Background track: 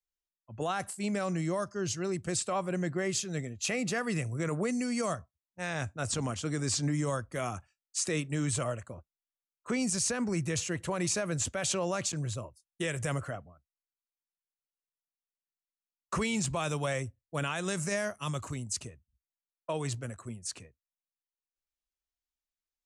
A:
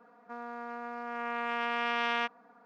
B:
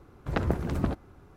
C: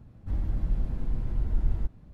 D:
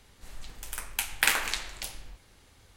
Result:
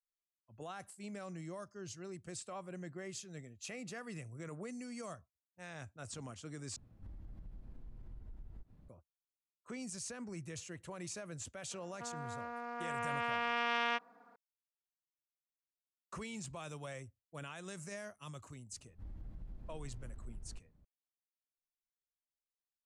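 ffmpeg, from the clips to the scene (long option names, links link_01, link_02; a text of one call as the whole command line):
ffmpeg -i bed.wav -i cue0.wav -i cue1.wav -i cue2.wav -filter_complex "[3:a]asplit=2[link_01][link_02];[0:a]volume=-14dB[link_03];[link_01]acompressor=threshold=-37dB:ratio=6:attack=3.2:release=140:knee=1:detection=peak[link_04];[1:a]bass=frequency=250:gain=-2,treble=frequency=4000:gain=3[link_05];[link_02]acompressor=threshold=-25dB:ratio=6:attack=3.2:release=140:knee=1:detection=peak[link_06];[link_03]asplit=2[link_07][link_08];[link_07]atrim=end=6.764[link_09];[link_04]atrim=end=2.13,asetpts=PTS-STARTPTS,volume=-10dB[link_10];[link_08]atrim=start=8.886[link_11];[link_05]atrim=end=2.65,asetpts=PTS-STARTPTS,volume=-3.5dB,afade=type=in:duration=0.004:curve=hsin,afade=type=out:start_time=2.646:duration=0.004:curve=hsin,adelay=11710[link_12];[link_06]atrim=end=2.13,asetpts=PTS-STARTPTS,volume=-17.5dB,afade=type=in:duration=0.004:curve=hsin,afade=type=out:start_time=2.126:duration=0.004:curve=hsin,adelay=18720[link_13];[link_09][link_10]acrossfade=duration=0.004:curve1=hsin:curve2=hsin[link_14];[link_14][link_11]acrossfade=duration=0.004:curve1=hsin:curve2=hsin[link_15];[link_15][link_12][link_13]amix=inputs=3:normalize=0" out.wav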